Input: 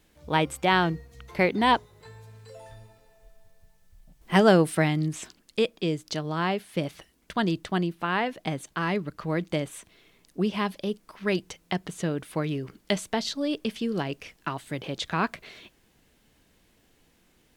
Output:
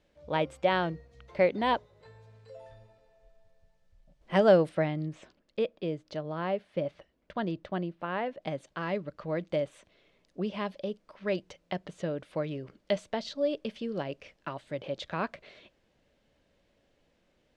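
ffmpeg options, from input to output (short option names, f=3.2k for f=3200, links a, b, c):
-filter_complex "[0:a]asettb=1/sr,asplit=3[a][b][c];[a]atrim=end=4.694[d];[b]atrim=start=4.69:end=8.42,asetpts=PTS-STARTPTS,afade=t=in:d=0.004:c=qsin,afade=t=out:st=3.726:d=0.004:c=qsin,highshelf=f=3.8k:g=-10.5[e];[c]atrim=start=8.416[f];[d][e]acrossfade=d=0.004:c1=hsin:c2=qsin[g];[g][f]acrossfade=d=0.004:c1=qsin:c2=hsin,lowpass=5k,equalizer=f=570:w=4.1:g=12.5,volume=-7.5dB"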